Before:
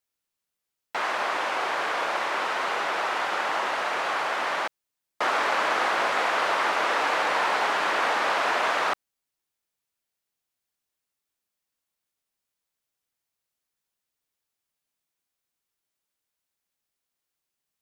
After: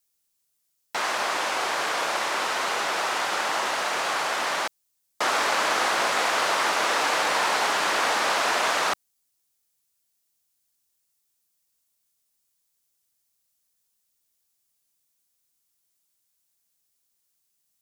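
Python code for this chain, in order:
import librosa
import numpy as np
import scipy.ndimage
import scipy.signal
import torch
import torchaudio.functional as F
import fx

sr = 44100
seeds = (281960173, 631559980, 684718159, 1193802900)

y = fx.bass_treble(x, sr, bass_db=4, treble_db=12)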